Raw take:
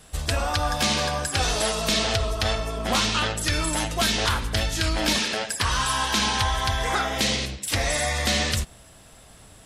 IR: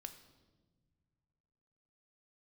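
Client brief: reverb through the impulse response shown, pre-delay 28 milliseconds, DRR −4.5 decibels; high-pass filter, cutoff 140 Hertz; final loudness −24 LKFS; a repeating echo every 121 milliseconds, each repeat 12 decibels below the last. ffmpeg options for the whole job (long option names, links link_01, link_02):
-filter_complex "[0:a]highpass=140,aecho=1:1:121|242|363:0.251|0.0628|0.0157,asplit=2[link_01][link_02];[1:a]atrim=start_sample=2205,adelay=28[link_03];[link_02][link_03]afir=irnorm=-1:irlink=0,volume=9.5dB[link_04];[link_01][link_04]amix=inputs=2:normalize=0,volume=-6dB"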